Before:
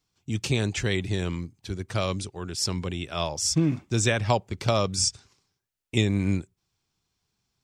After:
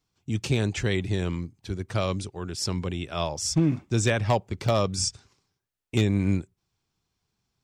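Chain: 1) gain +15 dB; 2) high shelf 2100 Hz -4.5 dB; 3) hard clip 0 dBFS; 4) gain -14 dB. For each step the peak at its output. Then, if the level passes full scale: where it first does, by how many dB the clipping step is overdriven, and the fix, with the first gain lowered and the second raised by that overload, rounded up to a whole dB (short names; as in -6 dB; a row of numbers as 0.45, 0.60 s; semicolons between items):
+6.5, +5.5, 0.0, -14.0 dBFS; step 1, 5.5 dB; step 1 +9 dB, step 4 -8 dB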